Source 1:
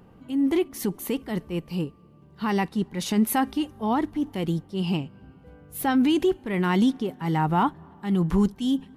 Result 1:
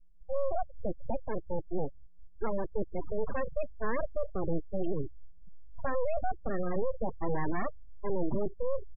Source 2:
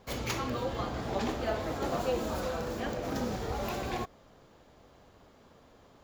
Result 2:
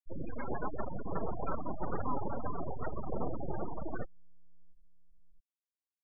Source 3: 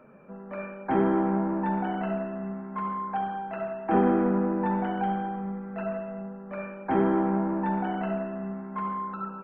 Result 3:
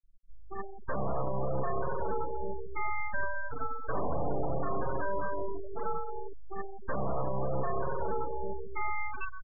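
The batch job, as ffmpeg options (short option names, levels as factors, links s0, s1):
-filter_complex "[0:a]aeval=exprs='abs(val(0))':c=same,acrossover=split=2600[s0][s1];[s1]acompressor=threshold=0.00282:ratio=4:attack=1:release=60[s2];[s0][s2]amix=inputs=2:normalize=0,alimiter=limit=0.0668:level=0:latency=1:release=26,asplit=2[s3][s4];[s4]adelay=677,lowpass=f=1700:p=1,volume=0.112,asplit=2[s5][s6];[s6]adelay=677,lowpass=f=1700:p=1,volume=0.37,asplit=2[s7][s8];[s8]adelay=677,lowpass=f=1700:p=1,volume=0.37[s9];[s3][s5][s7][s9]amix=inputs=4:normalize=0,afftfilt=real='re*gte(hypot(re,im),0.0355)':imag='im*gte(hypot(re,im),0.0355)':win_size=1024:overlap=0.75,volume=1.41"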